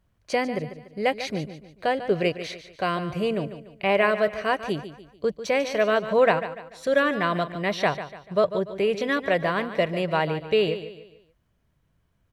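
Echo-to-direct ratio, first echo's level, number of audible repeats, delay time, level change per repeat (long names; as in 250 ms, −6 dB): −11.5 dB, −12.0 dB, 3, 146 ms, −8.0 dB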